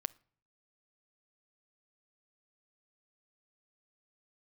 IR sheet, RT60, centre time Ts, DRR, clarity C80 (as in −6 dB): 0.55 s, 1 ms, 18.0 dB, 28.5 dB